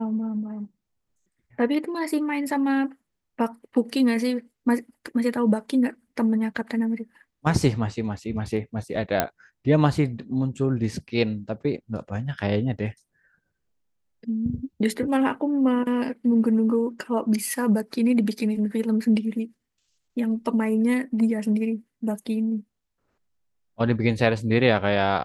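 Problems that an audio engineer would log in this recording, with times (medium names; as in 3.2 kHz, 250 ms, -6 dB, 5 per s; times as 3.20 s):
9.20 s: pop -5 dBFS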